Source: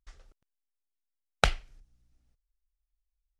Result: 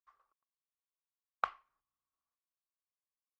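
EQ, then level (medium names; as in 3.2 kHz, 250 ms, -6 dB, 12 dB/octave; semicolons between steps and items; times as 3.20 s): band-pass filter 1.1 kHz, Q 13; +7.0 dB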